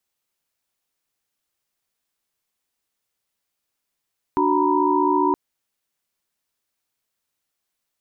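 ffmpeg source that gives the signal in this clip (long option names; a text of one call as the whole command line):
ffmpeg -f lavfi -i "aevalsrc='0.0841*(sin(2*PI*293.66*t)+sin(2*PI*369.99*t)+sin(2*PI*932.33*t)+sin(2*PI*987.77*t))':duration=0.97:sample_rate=44100" out.wav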